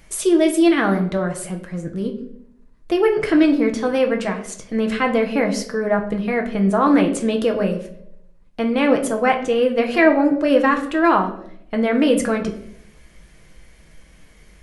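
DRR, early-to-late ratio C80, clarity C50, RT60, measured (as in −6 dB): 2.5 dB, 13.5 dB, 10.5 dB, 0.70 s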